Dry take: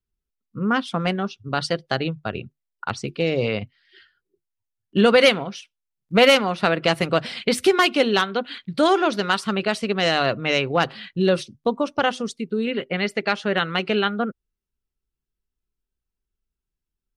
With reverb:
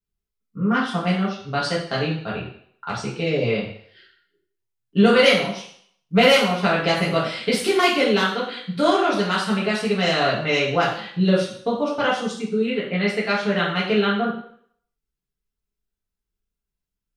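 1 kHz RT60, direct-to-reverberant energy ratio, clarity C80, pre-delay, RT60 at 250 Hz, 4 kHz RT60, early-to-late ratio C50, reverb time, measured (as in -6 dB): 0.65 s, -6.0 dB, 8.0 dB, 3 ms, 0.55 s, 0.60 s, 4.5 dB, 0.60 s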